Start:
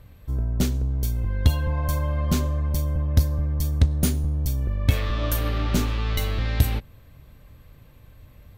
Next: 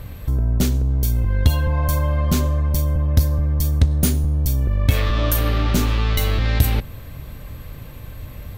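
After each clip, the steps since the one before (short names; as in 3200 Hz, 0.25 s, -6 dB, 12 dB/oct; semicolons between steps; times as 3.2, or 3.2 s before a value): high shelf 11000 Hz +5 dB; in parallel at 0 dB: negative-ratio compressor -29 dBFS, ratio -0.5; on the sum: gain +2.5 dB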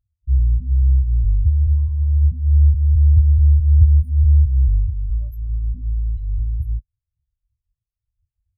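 limiter -13 dBFS, peak gain reduction 9.5 dB; high shelf 3500 Hz +6.5 dB; spectral expander 4:1; gain +5 dB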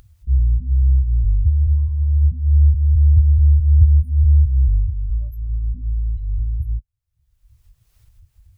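upward compressor, threshold -29 dBFS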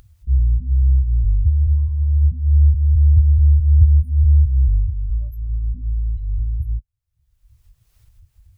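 nothing audible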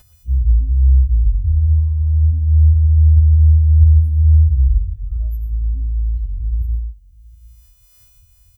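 frequency quantiser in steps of 3 st; echo 0.726 s -23.5 dB; non-linear reverb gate 0.15 s rising, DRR 7.5 dB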